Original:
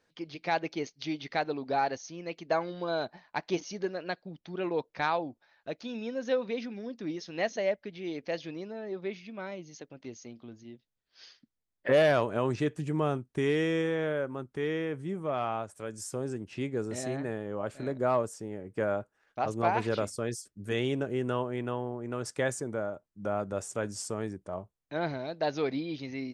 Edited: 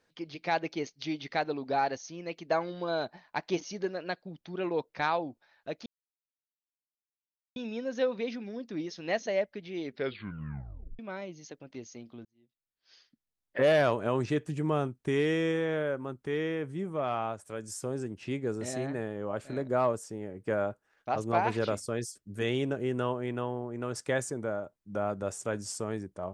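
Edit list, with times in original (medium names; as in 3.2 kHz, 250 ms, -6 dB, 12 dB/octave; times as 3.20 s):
5.86 s: insert silence 1.70 s
8.12 s: tape stop 1.17 s
10.55–12.15 s: fade in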